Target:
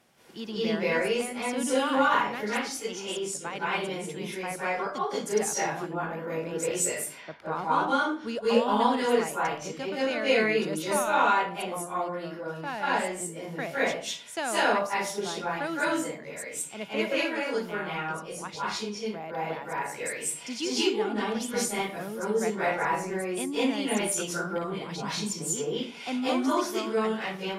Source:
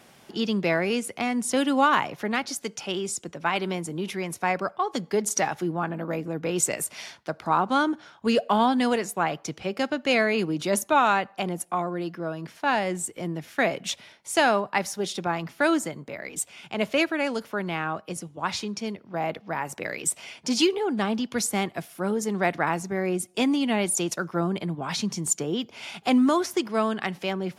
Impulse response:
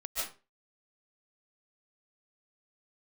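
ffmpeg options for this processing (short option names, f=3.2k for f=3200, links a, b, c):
-filter_complex "[0:a]asettb=1/sr,asplit=3[a][b][c];[a]atrim=end=6.954[d];[b]atrim=start=6.95:end=7.36,asetpts=PTS-STARTPTS,afade=t=in:d=0.004:c=qsin,afade=t=out:st=0.406:d=0.004:c=qsin,lowpass=2.2k[e];[c]atrim=start=7.356[f];[d][e]acrossfade=d=0.004:c1=hsin:c2=qsin[g];[g][f]acrossfade=d=0.004:c1=qsin:c2=hsin[h];[1:a]atrim=start_sample=2205,asetrate=33075,aresample=44100[i];[h][i]afir=irnorm=-1:irlink=0,volume=-8dB"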